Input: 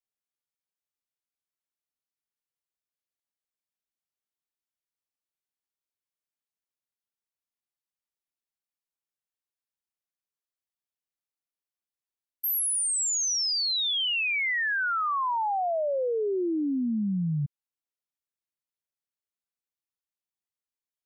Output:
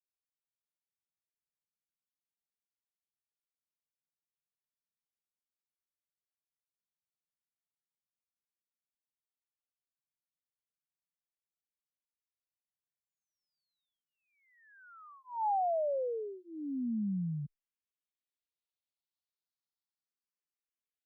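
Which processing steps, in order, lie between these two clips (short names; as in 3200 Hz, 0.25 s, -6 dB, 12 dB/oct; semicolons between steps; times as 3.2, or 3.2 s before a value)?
low-pass sweep 170 Hz -> 4300 Hz, 14.22–16.63; endless phaser +0.33 Hz; gain -6 dB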